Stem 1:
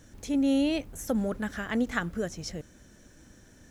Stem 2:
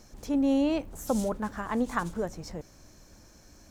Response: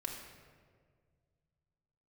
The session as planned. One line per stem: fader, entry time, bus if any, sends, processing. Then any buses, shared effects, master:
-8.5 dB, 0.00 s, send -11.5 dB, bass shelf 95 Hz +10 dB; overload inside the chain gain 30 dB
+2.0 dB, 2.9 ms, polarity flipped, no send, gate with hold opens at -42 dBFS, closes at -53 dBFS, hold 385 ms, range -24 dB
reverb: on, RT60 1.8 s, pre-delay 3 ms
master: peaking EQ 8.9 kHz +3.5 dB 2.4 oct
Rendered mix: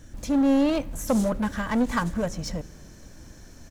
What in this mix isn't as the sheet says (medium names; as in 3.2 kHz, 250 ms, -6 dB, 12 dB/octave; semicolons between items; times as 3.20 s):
stem 1 -8.5 dB -> +1.0 dB; master: missing peaking EQ 8.9 kHz +3.5 dB 2.4 oct